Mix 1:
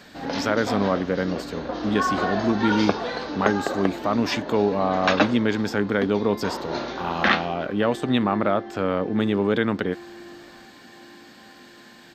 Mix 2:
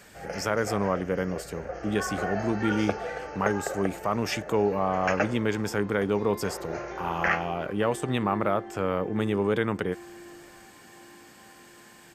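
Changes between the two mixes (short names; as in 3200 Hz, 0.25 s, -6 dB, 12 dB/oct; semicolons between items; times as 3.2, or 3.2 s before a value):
first sound: add fixed phaser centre 1000 Hz, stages 6; master: add fifteen-band EQ 250 Hz -9 dB, 630 Hz -4 dB, 1600 Hz -4 dB, 4000 Hz -11 dB, 10000 Hz +12 dB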